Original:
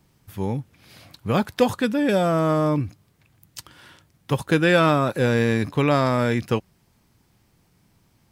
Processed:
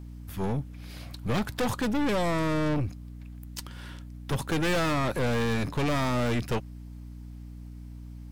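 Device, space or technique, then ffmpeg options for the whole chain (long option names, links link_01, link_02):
valve amplifier with mains hum: -af "aeval=exprs='(tanh(22.4*val(0)+0.45)-tanh(0.45))/22.4':channel_layout=same,aeval=exprs='val(0)+0.00708*(sin(2*PI*60*n/s)+sin(2*PI*2*60*n/s)/2+sin(2*PI*3*60*n/s)/3+sin(2*PI*4*60*n/s)/4+sin(2*PI*5*60*n/s)/5)':channel_layout=same,volume=2.5dB"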